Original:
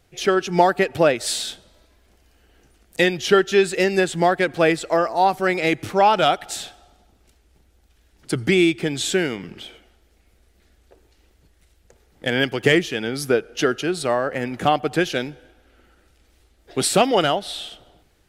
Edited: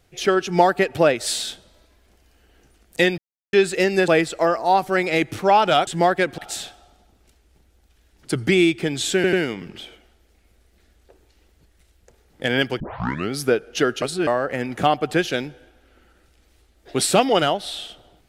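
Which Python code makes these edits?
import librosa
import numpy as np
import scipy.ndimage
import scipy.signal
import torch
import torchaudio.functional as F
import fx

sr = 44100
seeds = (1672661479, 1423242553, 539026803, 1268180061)

y = fx.edit(x, sr, fx.silence(start_s=3.18, length_s=0.35),
    fx.move(start_s=4.08, length_s=0.51, to_s=6.38),
    fx.stutter(start_s=9.15, slice_s=0.09, count=3),
    fx.tape_start(start_s=12.62, length_s=0.52),
    fx.reverse_span(start_s=13.84, length_s=0.25), tone=tone)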